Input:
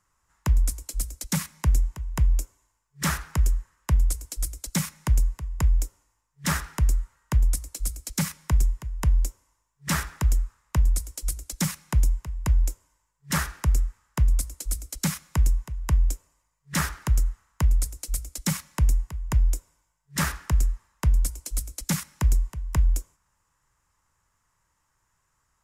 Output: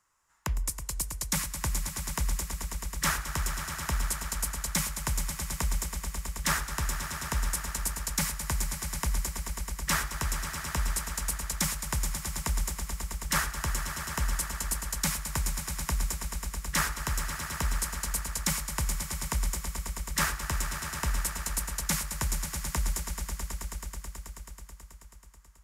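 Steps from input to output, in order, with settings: low shelf 300 Hz -11 dB; on a send: swelling echo 0.108 s, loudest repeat 5, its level -11 dB

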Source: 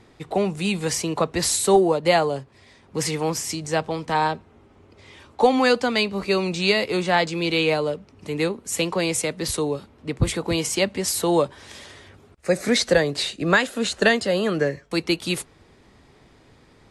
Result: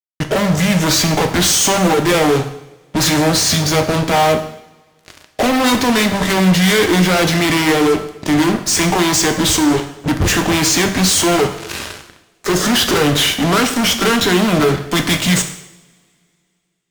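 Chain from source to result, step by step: formant shift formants -4 st; fuzz box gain 38 dB, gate -40 dBFS; two-slope reverb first 0.74 s, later 2.6 s, from -25 dB, DRR 5.5 dB

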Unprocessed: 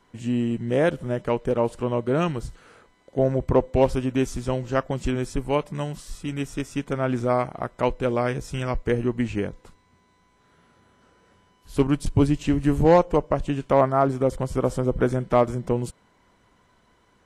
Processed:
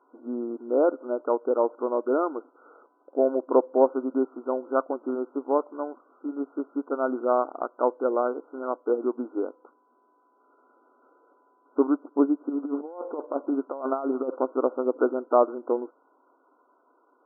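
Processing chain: 12.49–14.51 negative-ratio compressor -24 dBFS, ratio -0.5; brick-wall FIR band-pass 250–1500 Hz

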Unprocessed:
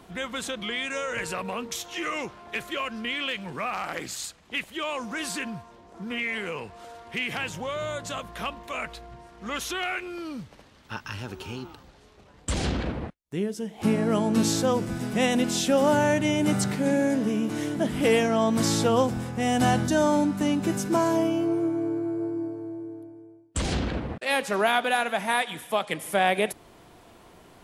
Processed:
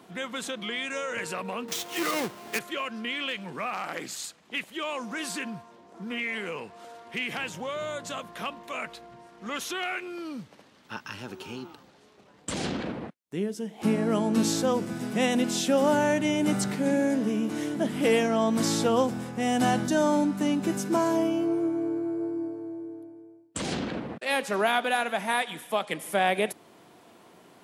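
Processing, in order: 1.68–2.59 half-waves squared off; Chebyshev high-pass 190 Hz, order 2; gain -1 dB

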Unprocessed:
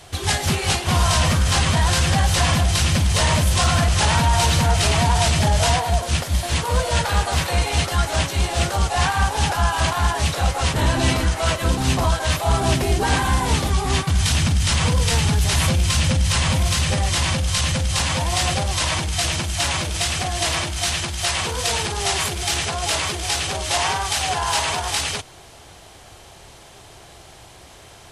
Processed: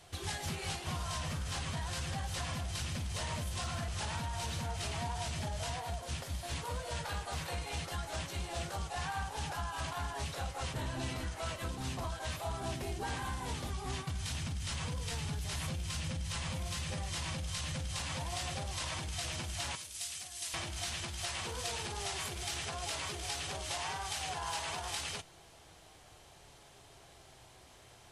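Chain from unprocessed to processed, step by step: 19.75–20.54 pre-emphasis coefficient 0.9; compressor, threshold -21 dBFS, peak gain reduction 8.5 dB; flange 0.12 Hz, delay 5.7 ms, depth 3.5 ms, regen +78%; gain -9 dB

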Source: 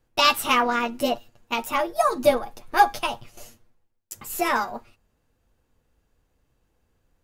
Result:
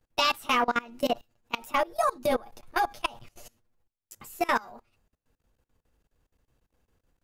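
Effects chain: level quantiser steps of 23 dB

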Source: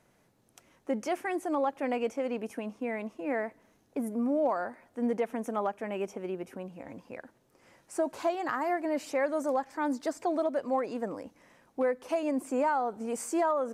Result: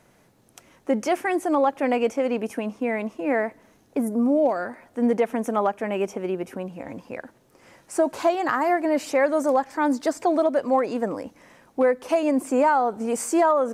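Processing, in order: 4.03–4.68 bell 3100 Hz -> 760 Hz -10 dB 0.79 oct; gain +8.5 dB

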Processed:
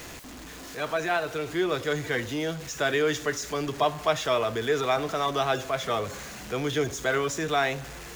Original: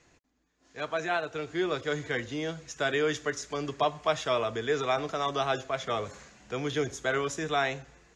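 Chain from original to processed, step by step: zero-crossing step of -38.5 dBFS; gain +2 dB

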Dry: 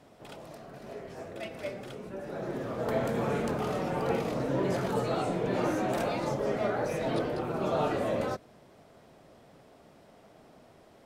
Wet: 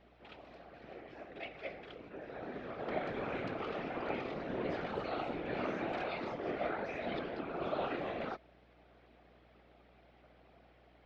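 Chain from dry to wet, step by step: speaker cabinet 280–3900 Hz, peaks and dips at 500 Hz -7 dB, 940 Hz -7 dB, 2300 Hz +4 dB; whisperiser; hum 60 Hz, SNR 27 dB; gain -4.5 dB

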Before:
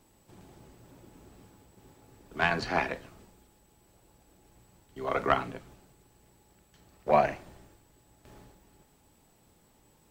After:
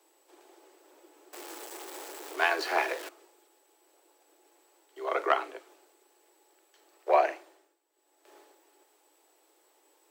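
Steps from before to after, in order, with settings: 1.33–3.09 zero-crossing step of -36 dBFS; steep high-pass 310 Hz 96 dB/oct; 7.29–8.35 dip -13.5 dB, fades 0.46 s

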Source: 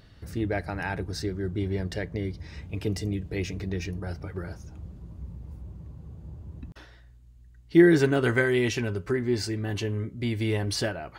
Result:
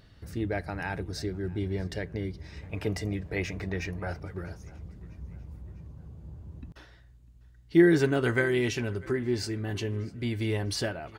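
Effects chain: 2.63–4.2 band shelf 1100 Hz +8 dB 2.4 oct; on a send: feedback echo 0.649 s, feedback 51%, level -23.5 dB; on the sum: gain -2.5 dB

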